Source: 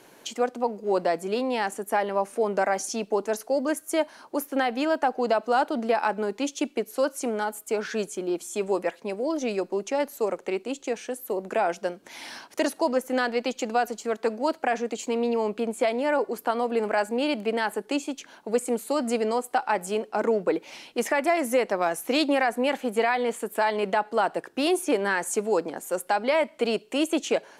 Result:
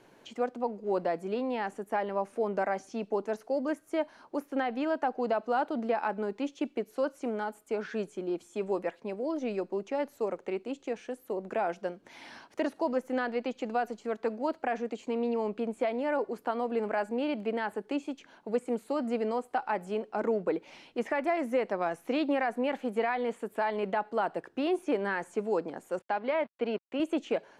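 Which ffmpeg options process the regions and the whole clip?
-filter_complex "[0:a]asettb=1/sr,asplit=3[a][b][c];[a]atrim=end=25.994[d];[b]atrim=start=25.99:end=27,asetpts=PTS-STARTPTS,afade=t=in:d=0.004:c=qsin,afade=t=out:st=1.006:d=0.004:c=qsin,aeval=exprs='sgn(val(0))*max(abs(val(0))-0.00794,0)':c=same,highpass=150,lowpass=3.8k[e];[c]atrim=start=26.996[f];[d][e]acrossfade=d=0.004:c1=hsin:c2=qsin[g];[g][f]acrossfade=d=0.004:c1=qsin:c2=hsin,aemphasis=mode=reproduction:type=50kf,acrossover=split=3500[h][i];[i]acompressor=threshold=-49dB:ratio=4:attack=1:release=60[j];[h][j]amix=inputs=2:normalize=0,lowshelf=f=130:g=9,volume=-6dB"

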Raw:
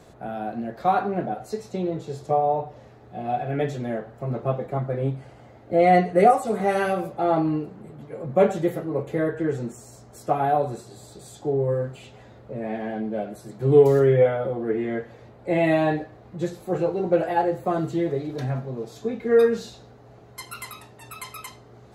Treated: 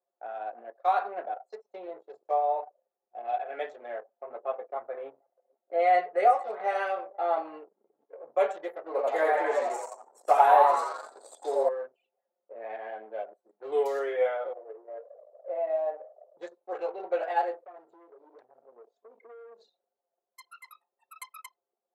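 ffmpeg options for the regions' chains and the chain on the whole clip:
-filter_complex "[0:a]asettb=1/sr,asplit=3[a][b][c];[a]atrim=end=4.184[d];[b]atrim=start=4.18:end=7.54,asetpts=PTS-STARTPTS,afade=t=in:d=0.004:c=qsin,afade=t=out:st=3.356:d=0.004:c=qsin,aemphasis=mode=reproduction:type=50kf,aecho=1:1:475:0.0794,atrim=end_sample=148176[e];[c]atrim=start=7.536[f];[d][e]acrossfade=d=0.004:c1=hsin:c2=qsin[g];[g][f]acrossfade=d=0.004:c1=qsin:c2=hsin,asettb=1/sr,asplit=3[h][i][j];[h]atrim=end=8.864[k];[i]atrim=start=8.86:end=11.69,asetpts=PTS-STARTPTS,afade=t=in:d=0.004:c=qsin,afade=t=out:st=2.826:d=0.004:c=qsin,highpass=48,acontrast=50,asplit=8[l][m][n][o][p][q][r][s];[m]adelay=86,afreqshift=130,volume=-3dB[t];[n]adelay=172,afreqshift=260,volume=-9dB[u];[o]adelay=258,afreqshift=390,volume=-15dB[v];[p]adelay=344,afreqshift=520,volume=-21.1dB[w];[q]adelay=430,afreqshift=650,volume=-27.1dB[x];[r]adelay=516,afreqshift=780,volume=-33.1dB[y];[s]adelay=602,afreqshift=910,volume=-39.1dB[z];[l][t][u][v][w][x][y][z]amix=inputs=8:normalize=0,atrim=end_sample=124803[aa];[j]atrim=start=11.686[ab];[k][aa]acrossfade=d=0.004:c1=hsin:c2=qsin[ac];[ac][ab]acrossfade=d=0.004:c1=qsin:c2=hsin,asettb=1/sr,asplit=3[ad][ae][af];[ad]atrim=end=14.534[ag];[ae]atrim=start=14.53:end=16.37,asetpts=PTS-STARTPTS,afade=t=in:d=0.004:c=qsin,afade=t=out:st=1.836:d=0.004:c=qsin,aeval=exprs='val(0)+0.5*0.0398*sgn(val(0))':c=same,bandpass=f=580:t=q:w=4.1[ah];[af]atrim=start=16.366[ai];[ag][ah]acrossfade=d=0.004:c1=hsin:c2=qsin[aj];[aj][ai]acrossfade=d=0.004:c1=qsin:c2=hsin,asettb=1/sr,asplit=3[ak][al][am];[ak]atrim=end=17.624[an];[al]atrim=start=17.62:end=20.65,asetpts=PTS-STARTPTS,afade=t=in:d=0.004:c=qsin,afade=t=out:st=3.026:d=0.004:c=qsin,highpass=f=56:w=0.5412,highpass=f=56:w=1.3066,acompressor=threshold=-29dB:ratio=10:attack=3.2:release=140:knee=1:detection=peak,volume=34.5dB,asoftclip=hard,volume=-34.5dB[ao];[am]atrim=start=20.646[ap];[an][ao]acrossfade=d=0.004:c1=hsin:c2=qsin[aq];[aq][ap]acrossfade=d=0.004:c1=qsin:c2=hsin,anlmdn=10,highpass=f=550:w=0.5412,highpass=f=550:w=1.3066,volume=-3.5dB"

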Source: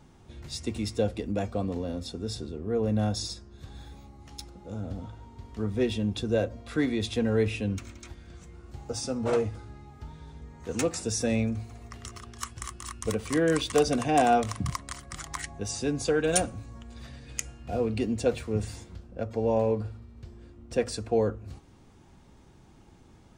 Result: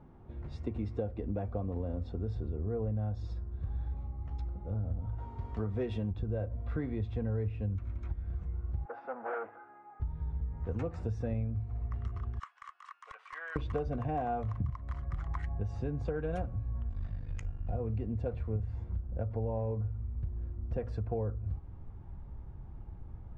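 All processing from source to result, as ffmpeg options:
-filter_complex "[0:a]asettb=1/sr,asplit=3[a][b][c];[a]atrim=end=5.184[d];[b]atrim=start=5.18:end=6.11,asetpts=PTS-STARTPTS,afade=t=in:d=0.004:c=qsin,afade=t=out:st=0.926:d=0.004:c=qsin,aemphasis=mode=production:type=bsi,acontrast=83[e];[c]atrim=start=6.106[f];[d][e]acrossfade=d=0.004:c1=hsin:c2=qsin[g];[g][f]acrossfade=d=0.004:c1=qsin:c2=hsin,asettb=1/sr,asplit=3[h][i][j];[h]atrim=end=8.854[k];[i]atrim=start=8.85:end=10,asetpts=PTS-STARTPTS,afade=t=in:d=0.004:c=qsin,afade=t=out:st=1.146:d=0.004:c=qsin,bandreject=f=600:w=12,volume=29.5dB,asoftclip=hard,volume=-29.5dB,highpass=f=370:w=0.5412,highpass=f=370:w=1.3066,equalizer=f=430:t=q:w=4:g=-6,equalizer=f=770:t=q:w=4:g=6,equalizer=f=1.5k:t=q:w=4:g=10,lowpass=f=2.6k:w=0.5412,lowpass=f=2.6k:w=1.3066[l];[j]atrim=start=9.996[m];[k][l]acrossfade=d=0.004:c1=hsin:c2=qsin[n];[n][m]acrossfade=d=0.004:c1=qsin:c2=hsin,asettb=1/sr,asplit=3[o][p][q];[o]atrim=end=12.394[r];[p]atrim=start=12.39:end=13.56,asetpts=PTS-STARTPTS,afade=t=in:d=0.004:c=qsin,afade=t=out:st=1.166:d=0.004:c=qsin,highpass=f=1.1k:w=0.5412,highpass=f=1.1k:w=1.3066,asoftclip=type=hard:threshold=-23dB[s];[q]atrim=start=13.556[t];[r][s]acrossfade=d=0.004:c1=hsin:c2=qsin[u];[u][t]acrossfade=d=0.004:c1=qsin:c2=hsin,asettb=1/sr,asplit=3[v][w][x];[v]atrim=end=16.884[y];[w]atrim=start=16.88:end=17.72,asetpts=PTS-STARTPTS,afade=t=in:d=0.004:c=qsin,afade=t=out:st=0.836:d=0.004:c=qsin,highshelf=f=4.1k:g=8.5,aeval=exprs='val(0)*sin(2*PI*25*n/s)':c=same[z];[x]atrim=start=17.716[aa];[y][z]acrossfade=d=0.004:c1=hsin:c2=qsin[ab];[ab][aa]acrossfade=d=0.004:c1=qsin:c2=hsin,lowpass=1.2k,asubboost=boost=6.5:cutoff=100,acompressor=threshold=-31dB:ratio=6"

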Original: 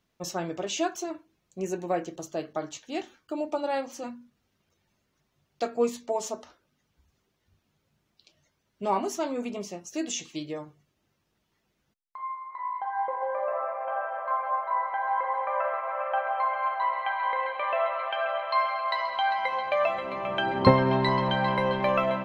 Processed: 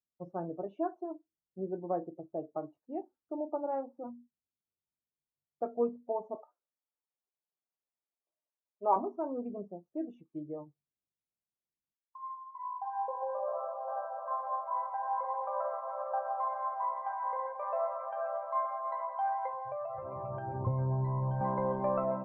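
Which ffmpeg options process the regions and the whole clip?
-filter_complex "[0:a]asettb=1/sr,asplit=3[a][b][c];[a]atrim=end=6.354[d];[b]atrim=start=6.35:end=8.96,asetpts=PTS-STARTPTS,afade=t=in:d=0.004:c=qsin,afade=t=out:st=2.606:d=0.004:c=qsin,highpass=580,acontrast=84[e];[c]atrim=start=8.956[f];[d][e]acrossfade=d=0.004:c1=hsin:c2=qsin[g];[g][f]acrossfade=d=0.004:c1=qsin:c2=hsin,asettb=1/sr,asplit=3[h][i][j];[h]atrim=end=19.524[k];[i]atrim=start=19.52:end=21.41,asetpts=PTS-STARTPTS,afade=t=in:d=0.004:c=qsin,afade=t=out:st=1.886:d=0.004:c=qsin,lowpass=3.7k,acompressor=threshold=-28dB:ratio=6:attack=3.2:release=140:knee=1:detection=peak,lowshelf=f=160:t=q:w=3:g=8[l];[j]atrim=start=21.406[m];[k][l]acrossfade=d=0.004:c1=hsin:c2=qsin[n];[n][m]acrossfade=d=0.004:c1=qsin:c2=hsin,afftdn=nr=24:nf=-36,lowpass=f=1.1k:w=0.5412,lowpass=f=1.1k:w=1.3066,aemphasis=mode=production:type=50fm,volume=-5dB"

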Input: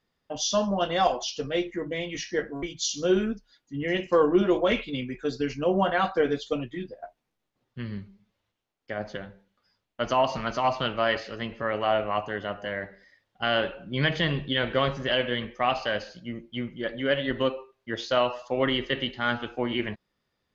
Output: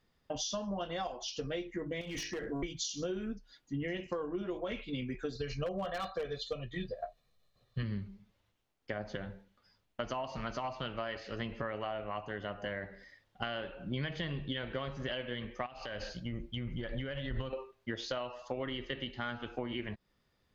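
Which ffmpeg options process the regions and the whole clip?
-filter_complex "[0:a]asettb=1/sr,asplit=3[a][b][c];[a]atrim=end=2.014[d];[b]atrim=start=2.01:end=2.48,asetpts=PTS-STARTPTS,afade=t=in:d=0.004:c=qsin,afade=t=out:st=0.466:d=0.004:c=qsin,bandreject=f=50:t=h:w=6,bandreject=f=100:t=h:w=6,bandreject=f=150:t=h:w=6,bandreject=f=200:t=h:w=6,bandreject=f=250:t=h:w=6,bandreject=f=300:t=h:w=6,bandreject=f=350:t=h:w=6,bandreject=f=400:t=h:w=6,bandreject=f=450:t=h:w=6,bandreject=f=500:t=h:w=6,acompressor=threshold=-33dB:ratio=10:attack=3.2:release=140:knee=1:detection=peak,asoftclip=type=hard:threshold=-34dB[e];[c]atrim=start=2.476[f];[d][e]acrossfade=d=0.004:c1=hsin:c2=qsin[g];[g][f]acrossfade=d=0.004:c1=qsin:c2=hsin,asettb=1/sr,asplit=3[h][i][j];[h]atrim=end=5.354[k];[i]atrim=start=5.35:end=7.83,asetpts=PTS-STARTPTS,afade=t=in:d=0.004:c=qsin,afade=t=out:st=2.476:d=0.004:c=qsin,equalizer=f=4k:w=6.9:g=14,aecho=1:1:1.7:0.72,atrim=end_sample=109368,aeval=exprs='0.188*(abs(mod(val(0)/0.188+3,4)-2)-1)':c=same[l];[j]atrim=start=7.826[m];[k][l]acrossfade=d=0.004:c1=hsin:c2=qsin[n];[n][m]acrossfade=d=0.004:c1=qsin:c2=hsin,asettb=1/sr,asplit=3[o][p][q];[o]atrim=end=15.664[r];[p]atrim=start=15.66:end=17.53,asetpts=PTS-STARTPTS,afade=t=in:d=0.004:c=qsin,afade=t=out:st=1.866:d=0.004:c=qsin,acompressor=threshold=-35dB:ratio=8:attack=3.2:release=140:knee=1:detection=peak,asubboost=boost=9.5:cutoff=120[s];[q]atrim=start=17.526[t];[r][s]acrossfade=d=0.004:c1=hsin:c2=qsin[u];[u][t]acrossfade=d=0.004:c1=qsin:c2=hsin,acompressor=threshold=-36dB:ratio=10,lowshelf=f=110:g=8,volume=1dB"

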